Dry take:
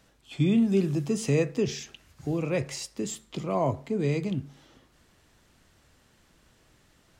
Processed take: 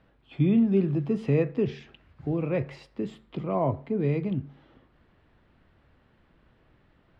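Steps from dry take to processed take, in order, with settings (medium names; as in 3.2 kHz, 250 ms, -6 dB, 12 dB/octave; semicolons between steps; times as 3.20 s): distance through air 440 m; trim +1.5 dB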